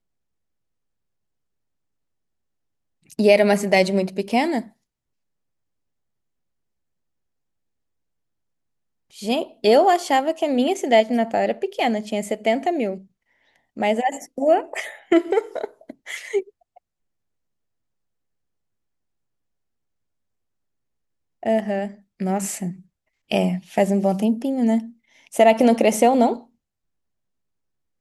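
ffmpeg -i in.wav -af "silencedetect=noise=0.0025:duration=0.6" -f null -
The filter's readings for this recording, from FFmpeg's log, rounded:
silence_start: 0.00
silence_end: 3.06 | silence_duration: 3.06
silence_start: 4.72
silence_end: 9.10 | silence_duration: 4.38
silence_start: 16.78
silence_end: 21.43 | silence_duration: 4.65
silence_start: 26.47
silence_end: 28.01 | silence_duration: 1.54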